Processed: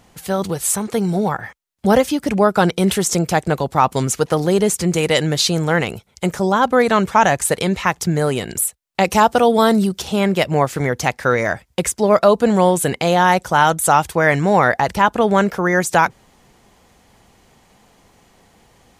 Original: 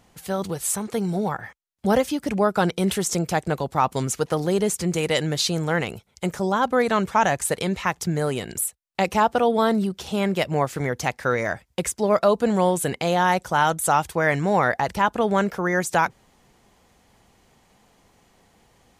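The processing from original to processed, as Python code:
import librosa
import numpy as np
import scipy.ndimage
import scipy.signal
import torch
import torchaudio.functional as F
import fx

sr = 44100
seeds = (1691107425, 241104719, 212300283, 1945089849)

y = fx.bass_treble(x, sr, bass_db=1, treble_db=7, at=(9.1, 10.02))
y = y * librosa.db_to_amplitude(6.0)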